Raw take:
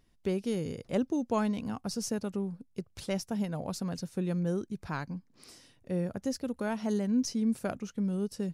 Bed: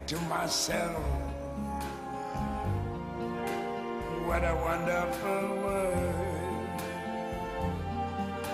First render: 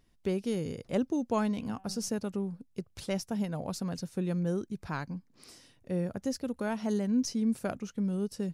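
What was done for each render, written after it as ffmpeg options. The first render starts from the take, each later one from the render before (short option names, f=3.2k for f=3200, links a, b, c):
-filter_complex "[0:a]asettb=1/sr,asplit=3[a][b][c];[a]atrim=end=1.484[d];[b]atrim=start=1.48:end=2.14,asetpts=PTS-STARTPTS,afade=t=in:d=0.004:c=qsin,afade=t=out:st=0.656:d=0.004:c=qsin,bandreject=f=191.2:t=h:w=4,bandreject=f=382.4:t=h:w=4,bandreject=f=573.6:t=h:w=4,bandreject=f=764.8:t=h:w=4,bandreject=f=956:t=h:w=4,bandreject=f=1.1472k:t=h:w=4,bandreject=f=1.3384k:t=h:w=4,bandreject=f=1.5296k:t=h:w=4,bandreject=f=1.7208k:t=h:w=4,bandreject=f=1.912k:t=h:w=4,bandreject=f=2.1032k:t=h:w=4,bandreject=f=2.2944k:t=h:w=4,bandreject=f=2.4856k:t=h:w=4,bandreject=f=2.6768k:t=h:w=4,bandreject=f=2.868k:t=h:w=4,bandreject=f=3.0592k:t=h:w=4,bandreject=f=3.2504k:t=h:w=4,bandreject=f=3.4416k:t=h:w=4[e];[c]atrim=start=2.136[f];[d][e]acrossfade=d=0.004:c1=hsin:c2=qsin[g];[g][f]acrossfade=d=0.004:c1=qsin:c2=hsin"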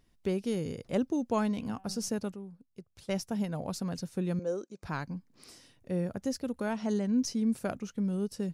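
-filter_complex "[0:a]asettb=1/sr,asplit=3[a][b][c];[a]atrim=end=4.394[d];[b]atrim=start=4.39:end=4.83,asetpts=PTS-STARTPTS,afade=t=in:d=0.004:c=qsin,afade=t=out:st=0.436:d=0.004:c=qsin,highpass=390,equalizer=f=530:t=q:w=4:g=7,equalizer=f=880:t=q:w=4:g=-3,equalizer=f=1.9k:t=q:w=4:g=-9,equalizer=f=3.2k:t=q:w=4:g=-7,equalizer=f=6.6k:t=q:w=4:g=4,lowpass=f=7.7k:w=0.5412,lowpass=f=7.7k:w=1.3066[e];[c]atrim=start=4.826[f];[d][e]acrossfade=d=0.004:c1=hsin:c2=qsin[g];[g][f]acrossfade=d=0.004:c1=qsin:c2=hsin,asettb=1/sr,asplit=3[h][i][j];[h]atrim=end=6.724[k];[i]atrim=start=6.72:end=7.22,asetpts=PTS-STARTPTS,afade=t=in:d=0.004:c=qsin,afade=t=out:st=0.496:d=0.004:c=qsin,lowpass=f=8.7k:w=0.5412,lowpass=f=8.7k:w=1.3066[l];[j]atrim=start=7.216[m];[k][l]acrossfade=d=0.004:c1=hsin:c2=qsin[n];[n][m]acrossfade=d=0.004:c1=qsin:c2=hsin,asplit=3[o][p][q];[o]atrim=end=2.342[r];[p]atrim=start=2.338:end=3.092,asetpts=PTS-STARTPTS,volume=-10dB[s];[q]atrim=start=3.088[t];[r][s]acrossfade=d=0.004:c1=hsin:c2=hsin[u];[u][t]acrossfade=d=0.004:c1=hsin:c2=hsin"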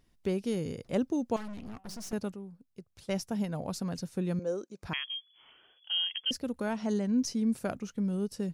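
-filter_complex "[0:a]asettb=1/sr,asplit=3[a][b][c];[a]atrim=end=1.364[d];[b]atrim=start=1.36:end=2.13,asetpts=PTS-STARTPTS,afade=t=in:d=0.004:c=qsin,afade=t=out:st=0.766:d=0.004:c=qsin,aeval=exprs='(tanh(100*val(0)+0.75)-tanh(0.75))/100':c=same[e];[c]atrim=start=2.126[f];[d][e]acrossfade=d=0.004:c1=hsin:c2=qsin[g];[g][f]acrossfade=d=0.004:c1=qsin:c2=hsin,asettb=1/sr,asplit=3[h][i][j];[h]atrim=end=4.934[k];[i]atrim=start=4.93:end=6.31,asetpts=PTS-STARTPTS,afade=t=in:d=0.004:c=qsin,afade=t=out:st=1.376:d=0.004:c=qsin,lowpass=f=2.9k:t=q:w=0.5098,lowpass=f=2.9k:t=q:w=0.6013,lowpass=f=2.9k:t=q:w=0.9,lowpass=f=2.9k:t=q:w=2.563,afreqshift=-3400[l];[j]atrim=start=6.306[m];[k][l]acrossfade=d=0.004:c1=hsin:c2=qsin[n];[n][m]acrossfade=d=0.004:c1=qsin:c2=hsin"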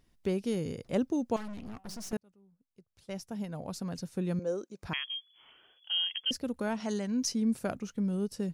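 -filter_complex "[0:a]asettb=1/sr,asplit=3[a][b][c];[a]atrim=end=6.804[d];[b]atrim=start=6.8:end=7.32,asetpts=PTS-STARTPTS,afade=t=in:d=0.004:c=qsin,afade=t=out:st=0.516:d=0.004:c=qsin,tiltshelf=f=760:g=-4.5[e];[c]atrim=start=7.316[f];[d][e]acrossfade=d=0.004:c1=hsin:c2=qsin[g];[g][f]acrossfade=d=0.004:c1=qsin:c2=hsin,asplit=2[h][i];[h]atrim=end=2.17,asetpts=PTS-STARTPTS,afade=t=out:st=2.166:d=0.004:c=hsin[j];[i]atrim=start=2.17,asetpts=PTS-STARTPTS,afade=t=in:d=2.22[k];[j][k]concat=n=2:v=0:a=1"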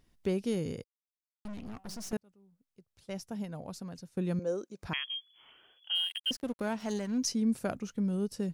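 -filter_complex "[0:a]asettb=1/sr,asplit=3[a][b][c];[a]atrim=end=5.954[d];[b]atrim=start=5.95:end=7.18,asetpts=PTS-STARTPTS,afade=t=in:d=0.004:c=qsin,afade=t=out:st=1.226:d=0.004:c=qsin,aeval=exprs='sgn(val(0))*max(abs(val(0))-0.00376,0)':c=same[e];[c]atrim=start=7.176[f];[d][e]acrossfade=d=0.004:c1=hsin:c2=qsin[g];[g][f]acrossfade=d=0.004:c1=qsin:c2=hsin,asplit=4[h][i][j][k];[h]atrim=end=0.84,asetpts=PTS-STARTPTS,afade=t=out:st=0.836:d=0.004:c=hsin[l];[i]atrim=start=0.84:end=1.45,asetpts=PTS-STARTPTS,volume=0[m];[j]atrim=start=1.45:end=4.17,asetpts=PTS-STARTPTS,afade=t=in:d=0.004:c=hsin,afade=t=out:st=1.87:d=0.85:silence=0.266073[n];[k]atrim=start=4.17,asetpts=PTS-STARTPTS,afade=t=in:d=0.004:c=hsin:silence=0.266073[o];[l][m][n][o]concat=n=4:v=0:a=1"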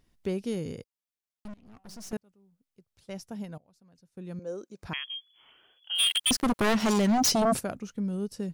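-filter_complex "[0:a]asplit=3[a][b][c];[a]afade=t=out:st=5.98:d=0.02[d];[b]aeval=exprs='0.106*sin(PI/2*3.98*val(0)/0.106)':c=same,afade=t=in:st=5.98:d=0.02,afade=t=out:st=7.59:d=0.02[e];[c]afade=t=in:st=7.59:d=0.02[f];[d][e][f]amix=inputs=3:normalize=0,asplit=3[g][h][i];[g]atrim=end=1.54,asetpts=PTS-STARTPTS,afade=t=out:st=1.536:d=0.004:c=hsin:silence=0.0841395[j];[h]atrim=start=1.54:end=3.58,asetpts=PTS-STARTPTS,afade=t=in:d=0.59:silence=0.0841395,afade=t=out:st=2.036:d=0.004:c=hsin:silence=0.0668344[k];[i]atrim=start=3.58,asetpts=PTS-STARTPTS,afade=t=in:d=1.16:c=qua:silence=0.0668344[l];[j][k][l]concat=n=3:v=0:a=1"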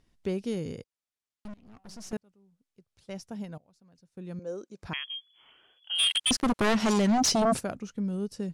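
-af "lowpass=9.9k"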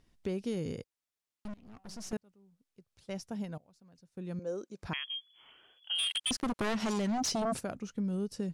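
-af "alimiter=limit=-23dB:level=0:latency=1:release=418,acompressor=threshold=-30dB:ratio=4"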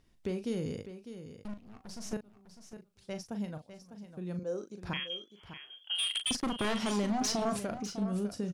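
-filter_complex "[0:a]asplit=2[a][b];[b]adelay=39,volume=-9dB[c];[a][c]amix=inputs=2:normalize=0,aecho=1:1:602:0.266"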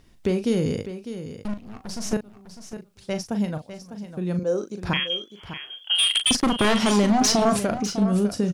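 -af "volume=12dB"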